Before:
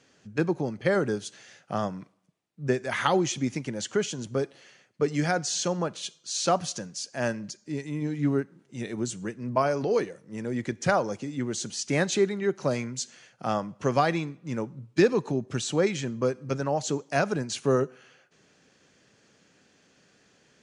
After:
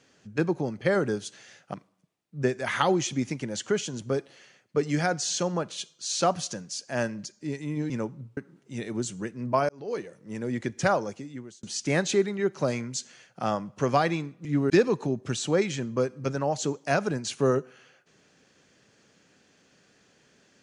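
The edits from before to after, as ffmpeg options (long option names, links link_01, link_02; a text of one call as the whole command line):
ffmpeg -i in.wav -filter_complex "[0:a]asplit=8[link_01][link_02][link_03][link_04][link_05][link_06][link_07][link_08];[link_01]atrim=end=1.742[link_09];[link_02]atrim=start=1.988:end=8.152[link_10];[link_03]atrim=start=14.478:end=14.952[link_11];[link_04]atrim=start=8.398:end=9.72,asetpts=PTS-STARTPTS,afade=type=out:start_time=1.318:duration=0.004:curve=hsin[link_12];[link_05]atrim=start=9.72:end=11.66,asetpts=PTS-STARTPTS,afade=type=in:duration=0.54,afade=type=out:start_time=1.23:duration=0.71[link_13];[link_06]atrim=start=11.66:end=14.482,asetpts=PTS-STARTPTS,afade=type=in:duration=0.004:curve=hsin[link_14];[link_07]atrim=start=8.148:end=8.402[link_15];[link_08]atrim=start=14.948[link_16];[link_09][link_10]acrossfade=duration=0.004:curve1=hsin:curve2=hsin[link_17];[link_17][link_11]acrossfade=duration=0.004:curve1=hsin:curve2=hsin[link_18];[link_12][link_13][link_14]concat=n=3:v=0:a=1[link_19];[link_18][link_19]acrossfade=duration=0.004:curve1=hsin:curve2=hsin[link_20];[link_20][link_15]acrossfade=duration=0.004:curve1=hsin:curve2=hsin[link_21];[link_21][link_16]acrossfade=duration=0.004:curve1=hsin:curve2=hsin" out.wav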